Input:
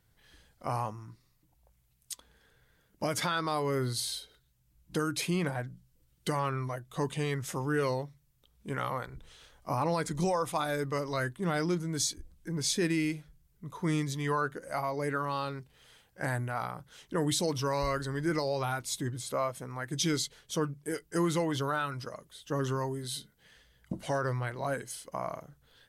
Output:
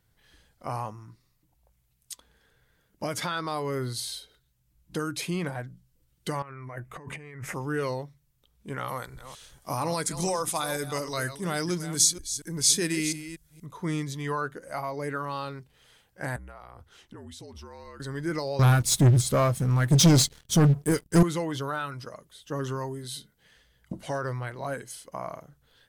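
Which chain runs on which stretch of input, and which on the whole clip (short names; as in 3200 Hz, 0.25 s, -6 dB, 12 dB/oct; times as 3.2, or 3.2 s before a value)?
6.42–7.54 resonant high shelf 2800 Hz -8 dB, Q 3 + negative-ratio compressor -41 dBFS
8.88–13.66 reverse delay 0.236 s, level -11.5 dB + bell 9600 Hz +13 dB 2 oct
16.36–18 high shelf 6300 Hz -6.5 dB + compressor 10:1, threshold -41 dBFS + frequency shift -56 Hz
18.59–21.23 tone controls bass +14 dB, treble +5 dB + sample leveller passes 3 + upward expander, over -30 dBFS
whole clip: dry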